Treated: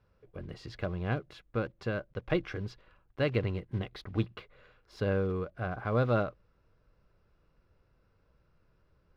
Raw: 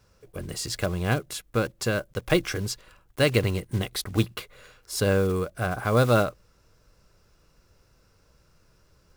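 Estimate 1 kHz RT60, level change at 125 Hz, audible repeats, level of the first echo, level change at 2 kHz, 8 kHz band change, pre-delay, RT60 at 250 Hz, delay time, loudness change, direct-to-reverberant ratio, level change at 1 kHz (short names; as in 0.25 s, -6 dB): none, -6.5 dB, none, none, -9.0 dB, under -25 dB, none, none, none, -7.5 dB, none, -8.0 dB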